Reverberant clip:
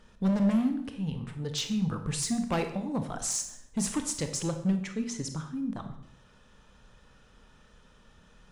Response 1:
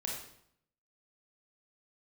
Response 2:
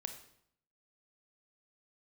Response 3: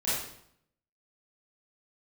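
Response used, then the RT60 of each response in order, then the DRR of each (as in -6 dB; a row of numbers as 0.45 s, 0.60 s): 2; 0.70 s, 0.70 s, 0.70 s; -2.0 dB, 6.5 dB, -12.0 dB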